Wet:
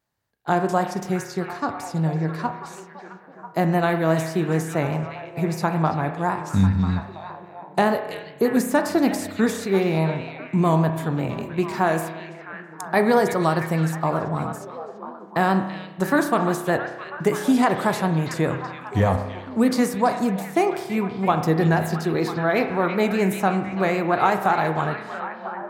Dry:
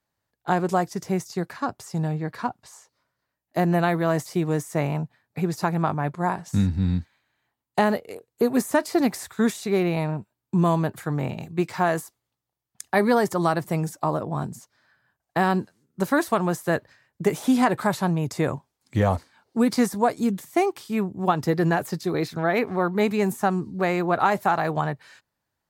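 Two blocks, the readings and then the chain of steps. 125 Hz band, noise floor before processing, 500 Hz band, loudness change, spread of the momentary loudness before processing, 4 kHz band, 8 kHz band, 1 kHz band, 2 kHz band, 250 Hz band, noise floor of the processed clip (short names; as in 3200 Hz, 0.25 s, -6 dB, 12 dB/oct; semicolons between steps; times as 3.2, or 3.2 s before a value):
+2.5 dB, -83 dBFS, +2.0 dB, +2.0 dB, 9 LU, +2.0 dB, +1.0 dB, +2.0 dB, +2.5 dB, +2.0 dB, -43 dBFS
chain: delay with a stepping band-pass 0.331 s, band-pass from 3000 Hz, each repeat -0.7 oct, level -5 dB; vibrato 5.1 Hz 48 cents; spring tank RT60 1.1 s, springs 31 ms, chirp 80 ms, DRR 7 dB; gain +1 dB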